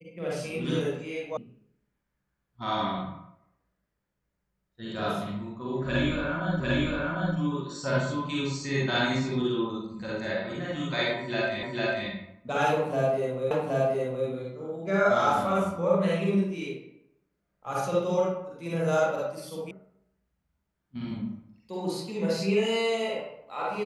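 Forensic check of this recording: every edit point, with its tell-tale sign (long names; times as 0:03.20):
0:01.37: cut off before it has died away
0:06.60: the same again, the last 0.75 s
0:11.63: the same again, the last 0.45 s
0:13.51: the same again, the last 0.77 s
0:19.71: cut off before it has died away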